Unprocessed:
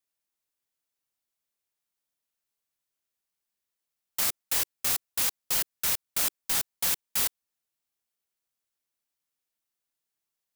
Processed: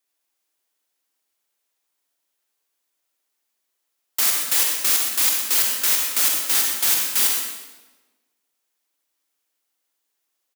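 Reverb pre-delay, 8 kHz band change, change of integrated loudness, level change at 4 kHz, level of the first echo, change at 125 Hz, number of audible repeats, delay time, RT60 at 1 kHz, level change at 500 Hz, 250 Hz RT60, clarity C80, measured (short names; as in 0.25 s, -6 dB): 39 ms, +9.5 dB, +9.5 dB, +9.5 dB, -11.0 dB, n/a, 1, 0.124 s, 1.1 s, +5.5 dB, 1.3 s, 3.0 dB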